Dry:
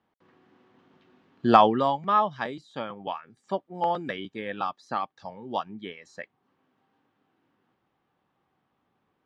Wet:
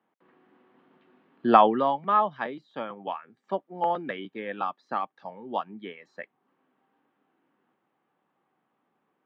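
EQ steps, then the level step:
high-pass filter 110 Hz
three-way crossover with the lows and the highs turned down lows −17 dB, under 150 Hz, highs −23 dB, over 3,400 Hz
0.0 dB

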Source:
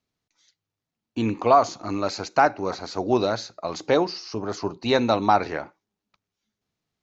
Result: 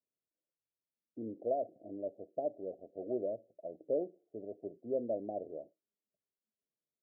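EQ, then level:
Butterworth low-pass 650 Hz 96 dB per octave
first difference
+11.0 dB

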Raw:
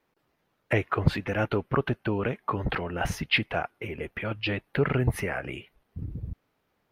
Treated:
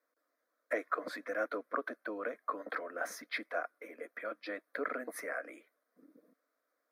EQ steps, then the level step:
Butterworth high-pass 310 Hz 36 dB per octave
phaser with its sweep stopped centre 570 Hz, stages 8
−4.5 dB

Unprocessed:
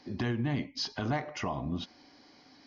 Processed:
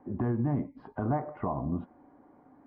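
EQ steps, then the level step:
low-pass filter 1,200 Hz 24 dB per octave
+2.5 dB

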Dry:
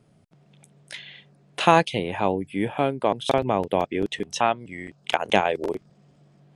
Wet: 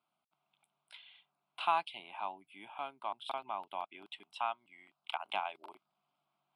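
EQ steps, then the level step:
high-pass filter 890 Hz 12 dB per octave
high-shelf EQ 2,400 Hz −10.5 dB
phaser with its sweep stopped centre 1,800 Hz, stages 6
−6.5 dB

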